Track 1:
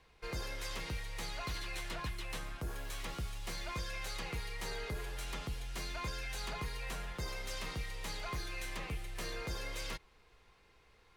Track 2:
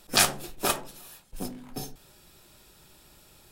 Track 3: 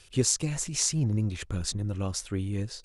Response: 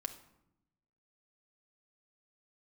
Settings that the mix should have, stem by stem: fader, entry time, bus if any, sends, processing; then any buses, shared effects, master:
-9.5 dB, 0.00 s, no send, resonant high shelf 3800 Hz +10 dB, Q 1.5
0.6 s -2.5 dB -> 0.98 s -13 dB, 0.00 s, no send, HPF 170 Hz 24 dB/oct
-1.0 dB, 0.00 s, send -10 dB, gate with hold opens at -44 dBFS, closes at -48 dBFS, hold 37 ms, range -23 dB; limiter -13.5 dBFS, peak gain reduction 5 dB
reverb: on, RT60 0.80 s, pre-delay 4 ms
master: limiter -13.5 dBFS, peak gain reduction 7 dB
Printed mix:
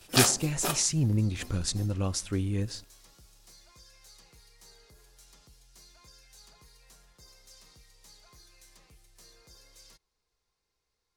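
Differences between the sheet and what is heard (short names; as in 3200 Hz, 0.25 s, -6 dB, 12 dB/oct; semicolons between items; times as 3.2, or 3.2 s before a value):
stem 1 -9.5 dB -> -18.5 dB; master: missing limiter -13.5 dBFS, peak gain reduction 7 dB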